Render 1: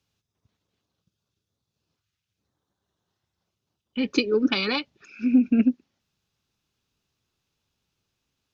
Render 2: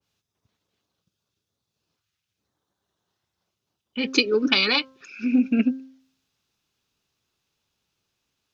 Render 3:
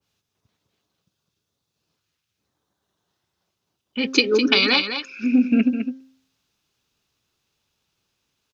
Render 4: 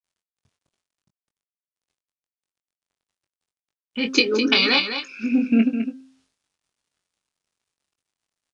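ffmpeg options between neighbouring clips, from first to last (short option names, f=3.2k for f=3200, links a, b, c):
-af "lowshelf=f=230:g=-7,bandreject=f=263.8:t=h:w=4,bandreject=f=527.6:t=h:w=4,bandreject=f=791.4:t=h:w=4,bandreject=f=1.0552k:t=h:w=4,bandreject=f=1.319k:t=h:w=4,bandreject=f=1.5828k:t=h:w=4,adynamicequalizer=threshold=0.00891:dfrequency=1800:dqfactor=0.7:tfrequency=1800:tqfactor=0.7:attack=5:release=100:ratio=0.375:range=2.5:mode=boostabove:tftype=highshelf,volume=2.5dB"
-af "aecho=1:1:207:0.376,volume=2.5dB"
-filter_complex "[0:a]acrusher=bits=10:mix=0:aa=0.000001,asplit=2[a][b];[b]adelay=22,volume=-6.5dB[c];[a][c]amix=inputs=2:normalize=0,aresample=22050,aresample=44100,volume=-1dB"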